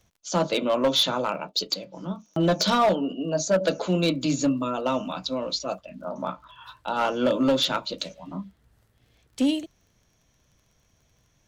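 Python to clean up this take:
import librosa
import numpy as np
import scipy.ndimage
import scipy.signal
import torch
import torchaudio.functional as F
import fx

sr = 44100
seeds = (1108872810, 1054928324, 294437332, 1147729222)

y = fx.fix_declip(x, sr, threshold_db=-15.5)
y = fx.fix_declick_ar(y, sr, threshold=6.5)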